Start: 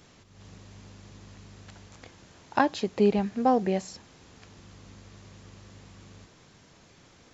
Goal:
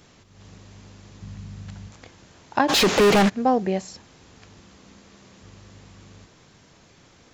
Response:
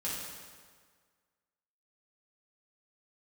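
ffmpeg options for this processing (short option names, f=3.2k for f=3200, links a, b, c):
-filter_complex "[0:a]asettb=1/sr,asplit=3[a][b][c];[a]atrim=end=1.224[d];[b]atrim=start=1.22:end=1.91,asetpts=PTS-STARTPTS,afade=t=in:d=0.004:c=qsin,afade=t=out:st=0.686:d=0.004:c=qsin,lowshelf=f=240:t=q:w=1.5:g=8.5[e];[c]atrim=start=1.906[f];[d][e]acrossfade=d=0.004:c1=hsin:c2=qsin[g];[g][f]acrossfade=d=0.004:c1=qsin:c2=hsin,asplit=3[h][i][j];[h]afade=t=out:st=2.68:d=0.02[k];[i]asplit=2[l][m];[m]highpass=f=720:p=1,volume=39dB,asoftclip=type=tanh:threshold=-12.5dB[n];[l][n]amix=inputs=2:normalize=0,lowpass=f=5.5k:p=1,volume=-6dB,afade=t=in:st=2.68:d=0.02,afade=t=out:st=3.28:d=0.02[o];[j]afade=t=in:st=3.28:d=0.02[p];[k][o][p]amix=inputs=3:normalize=0,asettb=1/sr,asplit=3[q][r][s];[q]atrim=end=4.584[t];[r]atrim=start=4.58:end=5.43,asetpts=PTS-STARTPTS,afade=t=in:d=0.004:c=qsin,afade=t=out:st=0.846:d=0.004:c=qsin,bandreject=f=50:t=h:w=6,bandreject=f=100:t=h:w=6,bandreject=f=150:t=h:w=6[u];[s]atrim=start=5.426[v];[t][u]acrossfade=d=0.004:c1=hsin:c2=qsin[w];[w][v]acrossfade=d=0.004:c1=qsin:c2=hsin,volume=2.5dB"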